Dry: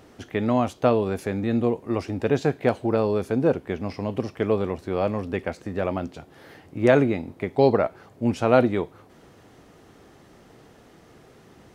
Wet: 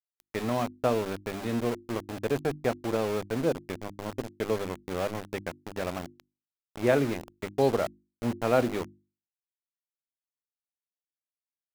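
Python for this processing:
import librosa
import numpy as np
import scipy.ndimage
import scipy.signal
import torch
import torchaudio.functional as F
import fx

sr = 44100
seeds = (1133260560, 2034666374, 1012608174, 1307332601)

y = np.where(np.abs(x) >= 10.0 ** (-26.0 / 20.0), x, 0.0)
y = fx.hum_notches(y, sr, base_hz=50, count=7)
y = y * 10.0 ** (-6.0 / 20.0)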